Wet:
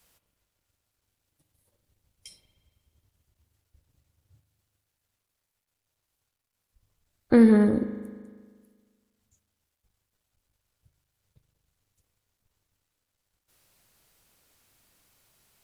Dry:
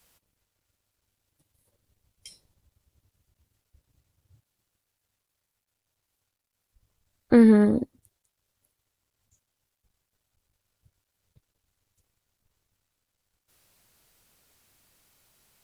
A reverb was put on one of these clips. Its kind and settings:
spring reverb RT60 1.7 s, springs 39 ms, chirp 80 ms, DRR 9.5 dB
level −1 dB

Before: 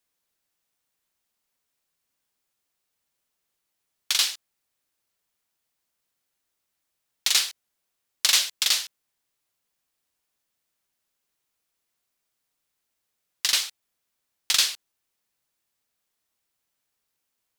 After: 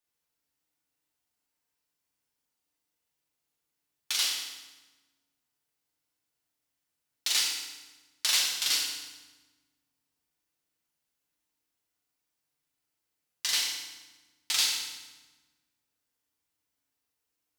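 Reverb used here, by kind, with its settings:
feedback delay network reverb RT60 1.2 s, low-frequency decay 1.6×, high-frequency decay 0.85×, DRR −3.5 dB
level −9 dB

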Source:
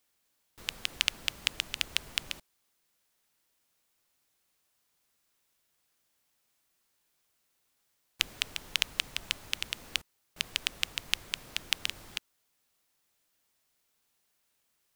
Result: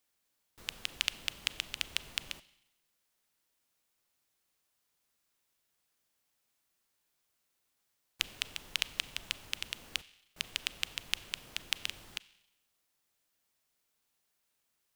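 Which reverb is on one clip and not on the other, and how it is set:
four-comb reverb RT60 0.92 s, combs from 30 ms, DRR 18 dB
level −4 dB

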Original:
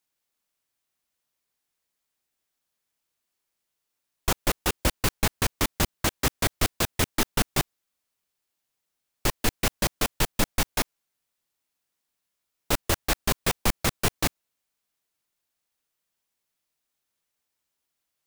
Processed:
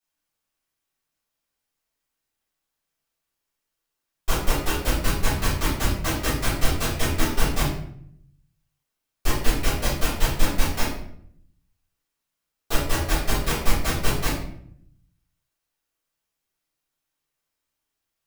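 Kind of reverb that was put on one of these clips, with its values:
rectangular room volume 120 cubic metres, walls mixed, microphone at 3.7 metres
level −12 dB

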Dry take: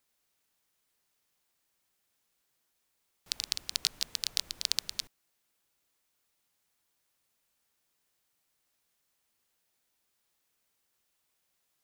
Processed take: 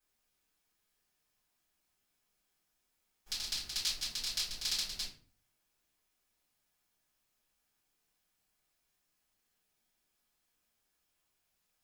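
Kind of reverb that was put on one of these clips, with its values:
rectangular room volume 32 cubic metres, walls mixed, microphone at 2.5 metres
level −14.5 dB

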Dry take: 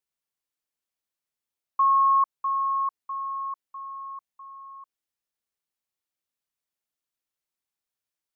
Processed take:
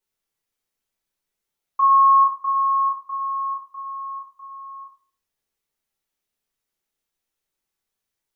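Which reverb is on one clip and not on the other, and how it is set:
rectangular room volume 35 cubic metres, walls mixed, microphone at 1.1 metres

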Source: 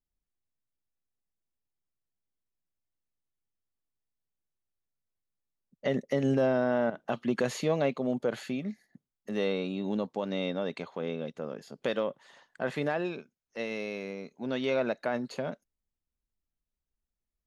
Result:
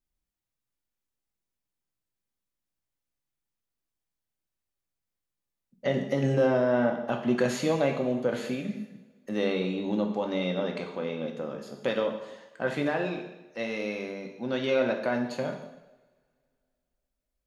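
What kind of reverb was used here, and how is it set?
coupled-rooms reverb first 0.88 s, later 2.6 s, from −25 dB, DRR 2 dB
level +1 dB

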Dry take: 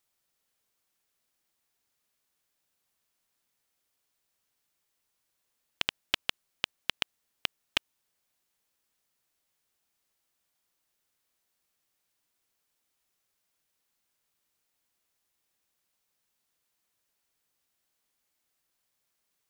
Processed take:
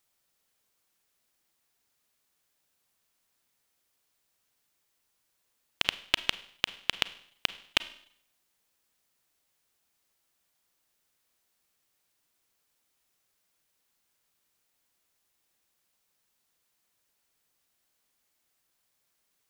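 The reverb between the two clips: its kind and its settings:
four-comb reverb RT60 0.63 s, combs from 33 ms, DRR 15 dB
level +3 dB

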